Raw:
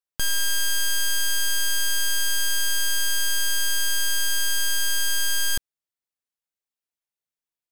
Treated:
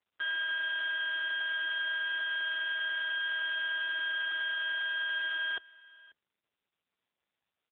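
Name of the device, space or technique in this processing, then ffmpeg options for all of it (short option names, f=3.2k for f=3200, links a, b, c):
satellite phone: -af "highpass=370,lowpass=3.2k,aecho=1:1:542:0.0708" -ar 8000 -c:a libopencore_amrnb -b:a 6700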